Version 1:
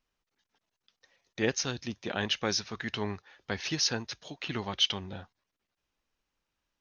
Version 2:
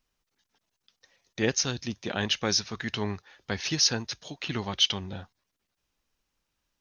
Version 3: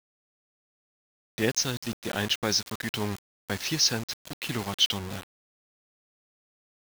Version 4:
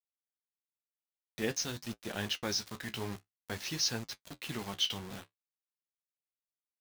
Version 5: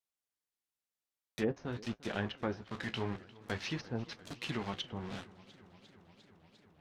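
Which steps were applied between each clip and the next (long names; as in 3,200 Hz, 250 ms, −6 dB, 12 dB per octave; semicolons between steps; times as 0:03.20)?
bass and treble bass +3 dB, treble +5 dB; level +1.5 dB
bit-depth reduction 6 bits, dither none
flanger 0.5 Hz, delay 8.6 ms, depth 8.4 ms, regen −46%; level −4 dB
treble cut that deepens with the level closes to 750 Hz, closed at −30 dBFS; feedback echo with a swinging delay time 349 ms, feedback 80%, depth 77 cents, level −21 dB; level +2 dB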